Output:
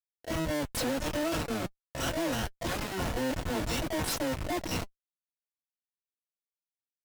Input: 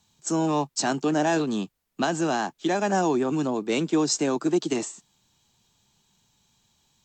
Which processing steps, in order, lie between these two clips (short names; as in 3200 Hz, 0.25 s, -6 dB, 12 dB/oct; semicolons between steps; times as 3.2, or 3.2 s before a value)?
in parallel at +2 dB: compressor 8:1, threshold -34 dBFS, peak gain reduction 15.5 dB; on the sum: LFO band-pass square 3 Hz 270–3200 Hz; Schmitt trigger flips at -36.5 dBFS; notch comb 200 Hz; harmoniser +12 st -1 dB